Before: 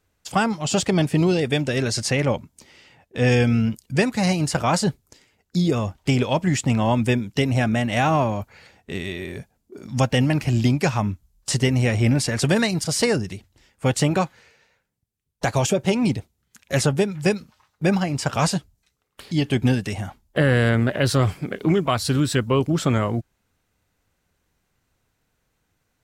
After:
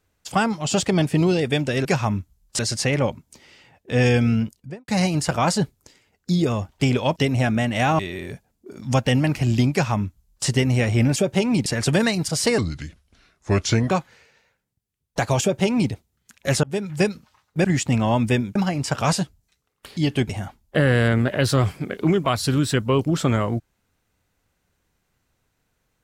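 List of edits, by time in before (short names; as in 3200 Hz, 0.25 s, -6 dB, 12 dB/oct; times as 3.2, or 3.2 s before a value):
3.61–4.14 studio fade out
6.42–7.33 move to 17.9
8.16–9.05 cut
10.78–11.52 copy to 1.85
13.14–14.16 speed 77%
15.67–16.17 copy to 12.22
16.89–17.22 fade in equal-power
19.64–19.91 cut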